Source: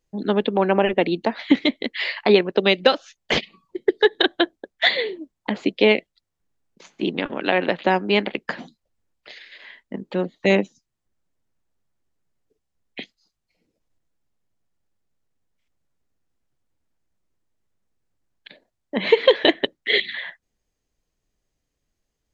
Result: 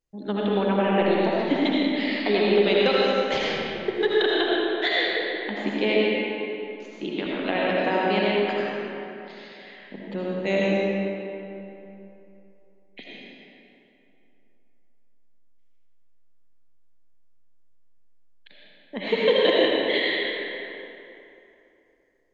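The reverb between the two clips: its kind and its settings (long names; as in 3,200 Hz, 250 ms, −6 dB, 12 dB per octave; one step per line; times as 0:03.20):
comb and all-pass reverb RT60 3 s, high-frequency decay 0.6×, pre-delay 40 ms, DRR −6 dB
level −9 dB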